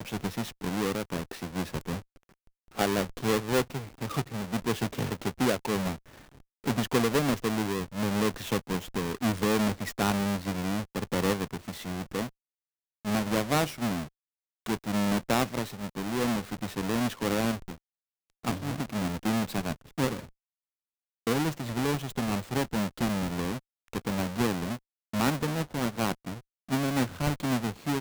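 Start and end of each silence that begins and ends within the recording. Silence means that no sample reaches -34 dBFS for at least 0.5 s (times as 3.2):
1.99–2.78
5.93–6.66
12.26–13.06
14.03–14.66
17.72–18.45
20.2–21.27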